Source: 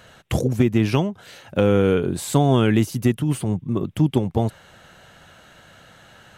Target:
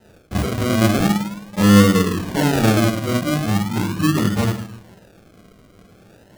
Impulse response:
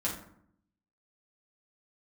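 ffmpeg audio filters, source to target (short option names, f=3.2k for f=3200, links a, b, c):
-filter_complex "[1:a]atrim=start_sample=2205[a];[0:a][a]afir=irnorm=-1:irlink=0,acrusher=samples=39:mix=1:aa=0.000001:lfo=1:lforange=23.4:lforate=0.4,volume=-6dB"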